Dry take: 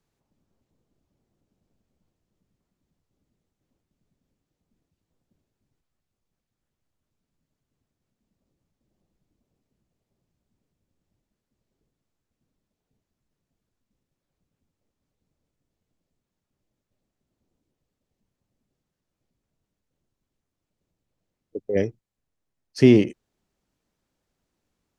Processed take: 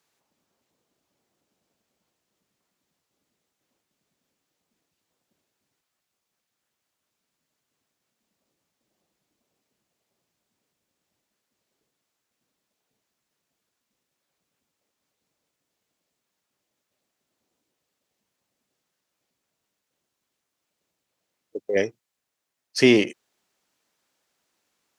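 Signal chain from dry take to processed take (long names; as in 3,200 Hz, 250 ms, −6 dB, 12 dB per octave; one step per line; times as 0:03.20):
high-pass filter 1,100 Hz 6 dB per octave
level +9 dB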